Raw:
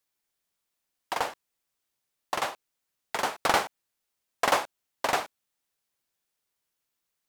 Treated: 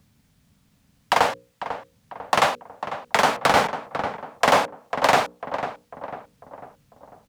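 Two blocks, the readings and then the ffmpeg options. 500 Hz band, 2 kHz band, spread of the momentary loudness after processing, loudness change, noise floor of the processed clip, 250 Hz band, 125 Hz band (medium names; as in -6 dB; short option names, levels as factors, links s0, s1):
+10.0 dB, +8.0 dB, 17 LU, +7.0 dB, -64 dBFS, +10.0 dB, +13.0 dB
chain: -filter_complex "[0:a]equalizer=f=350:w=4.3:g=-13,acrossover=split=470[s0][s1];[s1]acompressor=threshold=0.0158:ratio=2[s2];[s0][s2]amix=inputs=2:normalize=0,highshelf=f=7400:g=-9,bandreject=f=60:t=h:w=6,bandreject=f=120:t=h:w=6,bandreject=f=180:t=h:w=6,bandreject=f=240:t=h:w=6,bandreject=f=300:t=h:w=6,bandreject=f=360:t=h:w=6,bandreject=f=420:t=h:w=6,bandreject=f=480:t=h:w=6,bandreject=f=540:t=h:w=6,acrossover=split=230|3100[s3][s4][s5];[s3]acompressor=mode=upward:threshold=0.00224:ratio=2.5[s6];[s6][s4][s5]amix=inputs=3:normalize=0,highpass=f=100:p=1,asplit=2[s7][s8];[s8]adelay=497,lowpass=f=1500:p=1,volume=0.282,asplit=2[s9][s10];[s10]adelay=497,lowpass=f=1500:p=1,volume=0.52,asplit=2[s11][s12];[s12]adelay=497,lowpass=f=1500:p=1,volume=0.52,asplit=2[s13][s14];[s14]adelay=497,lowpass=f=1500:p=1,volume=0.52,asplit=2[s15][s16];[s16]adelay=497,lowpass=f=1500:p=1,volume=0.52,asplit=2[s17][s18];[s18]adelay=497,lowpass=f=1500:p=1,volume=0.52[s19];[s9][s11][s13][s15][s17][s19]amix=inputs=6:normalize=0[s20];[s7][s20]amix=inputs=2:normalize=0,alimiter=level_in=11.9:limit=0.891:release=50:level=0:latency=1,volume=0.631"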